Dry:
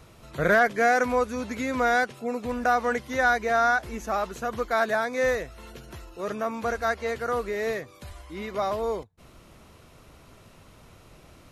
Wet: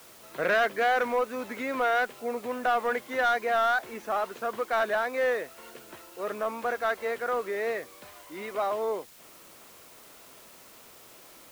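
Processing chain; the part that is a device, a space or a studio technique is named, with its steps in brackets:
tape answering machine (band-pass filter 330–3,200 Hz; soft clipping −18 dBFS, distortion −14 dB; tape wow and flutter; white noise bed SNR 23 dB)

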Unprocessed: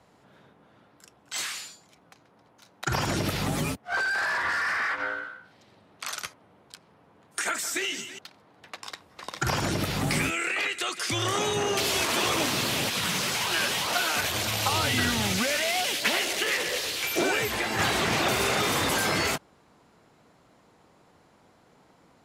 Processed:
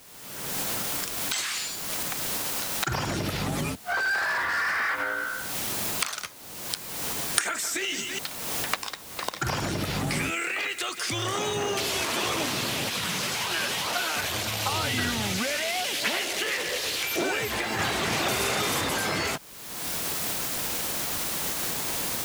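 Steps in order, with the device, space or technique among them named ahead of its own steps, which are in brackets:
0:18.03–0:18.81: high-shelf EQ 5,100 Hz +5 dB
cheap recorder with automatic gain (white noise bed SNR 21 dB; camcorder AGC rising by 39 dB per second)
level −2 dB

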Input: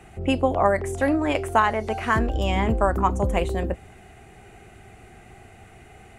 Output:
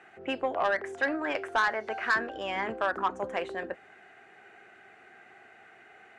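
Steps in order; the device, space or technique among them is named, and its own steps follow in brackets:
intercom (band-pass filter 360–4,600 Hz; parametric band 1,600 Hz +11 dB 0.58 octaves; soft clipping −11.5 dBFS, distortion −12 dB)
level −6.5 dB

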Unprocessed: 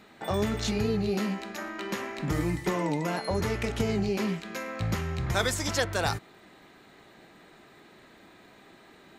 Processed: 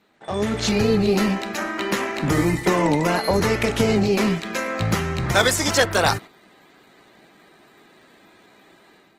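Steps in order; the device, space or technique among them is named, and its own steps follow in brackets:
video call (high-pass filter 140 Hz 6 dB per octave; automatic gain control gain up to 9 dB; noise gate −35 dBFS, range −8 dB; level +1.5 dB; Opus 16 kbit/s 48,000 Hz)

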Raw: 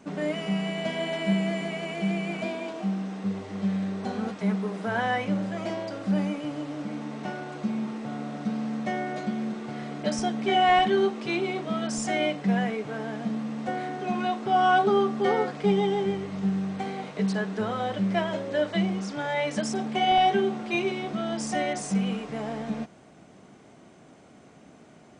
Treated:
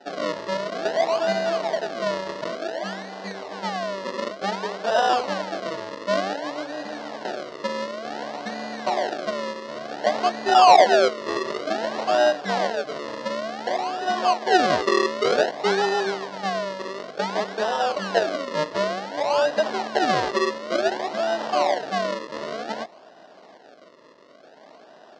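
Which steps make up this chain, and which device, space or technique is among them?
circuit-bent sampling toy (sample-and-hold swept by an LFO 39×, swing 100% 0.55 Hz; loudspeaker in its box 570–4,900 Hz, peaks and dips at 630 Hz +5 dB, 1,300 Hz −6 dB, 2,400 Hz −10 dB, 3,400 Hz −5 dB)
level +9 dB

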